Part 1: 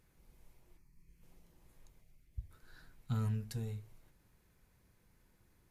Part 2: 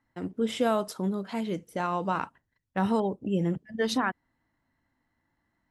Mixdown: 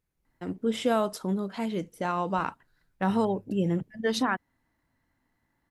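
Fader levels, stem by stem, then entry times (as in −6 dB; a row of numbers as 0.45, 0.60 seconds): −12.5, +0.5 decibels; 0.00, 0.25 seconds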